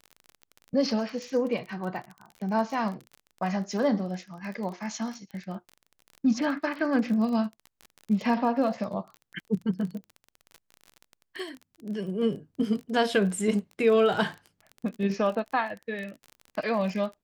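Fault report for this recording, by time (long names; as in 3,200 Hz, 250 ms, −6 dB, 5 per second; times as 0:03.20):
surface crackle 28 per second −34 dBFS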